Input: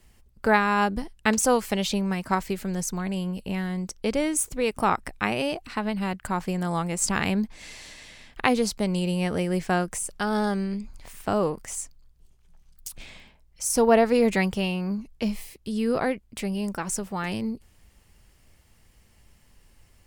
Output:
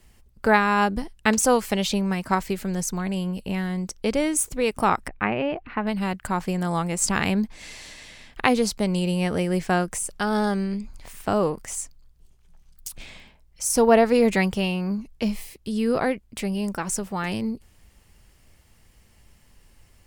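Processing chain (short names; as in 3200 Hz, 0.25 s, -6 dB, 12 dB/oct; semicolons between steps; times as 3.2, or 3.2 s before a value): 5.08–5.87 LPF 2500 Hz 24 dB/oct; gain +2 dB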